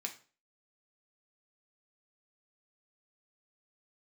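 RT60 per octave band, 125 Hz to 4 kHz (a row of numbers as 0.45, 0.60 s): 0.45, 0.40, 0.40, 0.35, 0.35, 0.35 s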